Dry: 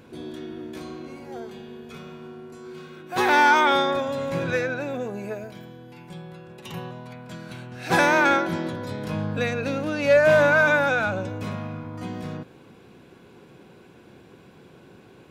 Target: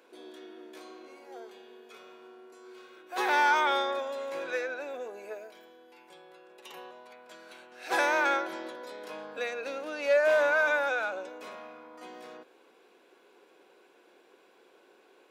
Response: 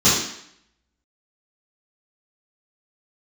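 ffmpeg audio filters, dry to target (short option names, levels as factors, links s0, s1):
-af "highpass=f=370:w=0.5412,highpass=f=370:w=1.3066,volume=0.447"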